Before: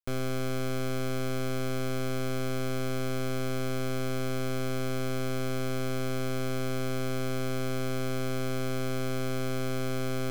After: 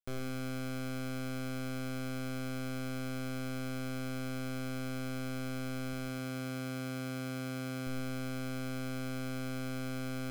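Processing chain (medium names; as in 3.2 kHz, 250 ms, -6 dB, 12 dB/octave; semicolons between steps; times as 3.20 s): 5.93–7.87 s: high-pass 51 Hz; reverberation RT60 1.0 s, pre-delay 87 ms, DRR 6.5 dB; trim -7 dB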